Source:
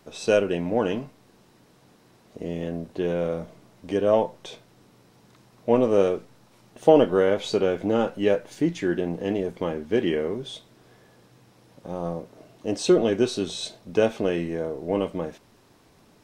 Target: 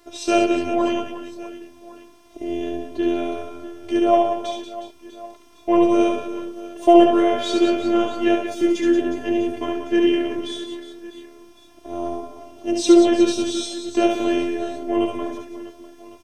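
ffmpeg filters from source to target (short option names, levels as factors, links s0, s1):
-af "afftfilt=real='hypot(re,im)*cos(PI*b)':imag='0':win_size=512:overlap=0.75,aecho=1:1:70|182|361.2|647.9|1107:0.631|0.398|0.251|0.158|0.1,volume=2.11"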